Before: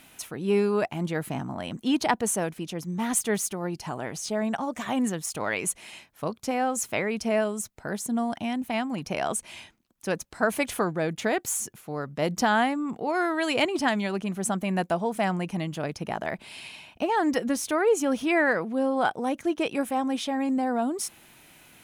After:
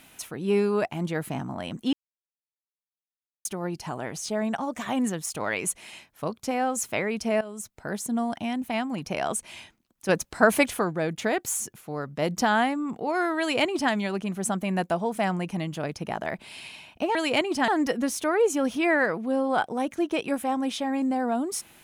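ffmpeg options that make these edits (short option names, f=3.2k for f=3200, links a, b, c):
-filter_complex "[0:a]asplit=8[a][b][c][d][e][f][g][h];[a]atrim=end=1.93,asetpts=PTS-STARTPTS,afade=t=out:st=1.926:d=0.004:c=hsin[i];[b]atrim=start=1.93:end=3.45,asetpts=PTS-STARTPTS,volume=0[j];[c]atrim=start=3.45:end=7.41,asetpts=PTS-STARTPTS,afade=t=in:d=0.004:c=hsin,afade=t=out:st=3.956:d=0.004:c=hsin:silence=0.158489[k];[d]atrim=start=7.41:end=10.092,asetpts=PTS-STARTPTS,afade=t=in:d=0.55:c=qsin:silence=0.158489[l];[e]atrim=start=10.088:end=10.682,asetpts=PTS-STARTPTS,volume=5.5dB[m];[f]atrim=start=10.678:end=17.152[n];[g]atrim=start=13.388:end=13.922[o];[h]atrim=start=17.148[p];[i][j][k][l]concat=n=4:v=0:a=1[q];[q][m]acrossfade=d=0.004:c1=hsin:c2=hsin[r];[r][n]acrossfade=d=0.004:c1=hsin:c2=hsin[s];[s][o]acrossfade=d=0.004:c1=hsin:c2=hsin[t];[t][p]acrossfade=d=0.004:c1=hsin:c2=hsin"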